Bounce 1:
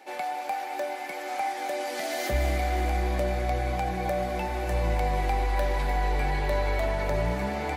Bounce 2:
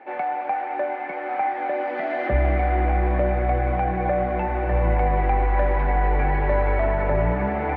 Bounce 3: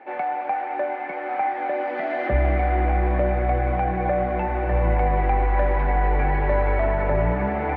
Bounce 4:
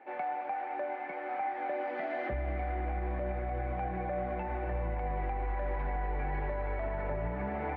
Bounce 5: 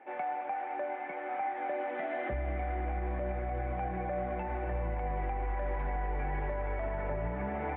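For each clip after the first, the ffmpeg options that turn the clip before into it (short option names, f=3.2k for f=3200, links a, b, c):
-af "lowpass=f=2.1k:w=0.5412,lowpass=f=2.1k:w=1.3066,volume=6dB"
-af anull
-af "alimiter=limit=-17dB:level=0:latency=1:release=113,volume=-9dB"
-af "aresample=8000,aresample=44100"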